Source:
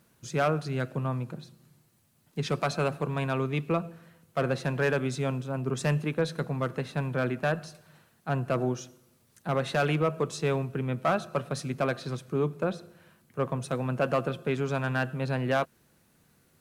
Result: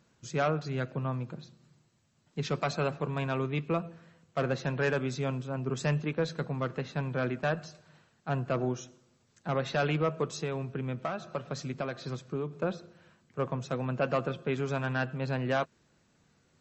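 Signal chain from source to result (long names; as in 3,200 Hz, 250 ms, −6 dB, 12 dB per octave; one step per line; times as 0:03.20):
0:10.30–0:12.53: downward compressor 20 to 1, threshold −27 dBFS, peak gain reduction 7.5 dB
level −2 dB
MP3 32 kbit/s 32,000 Hz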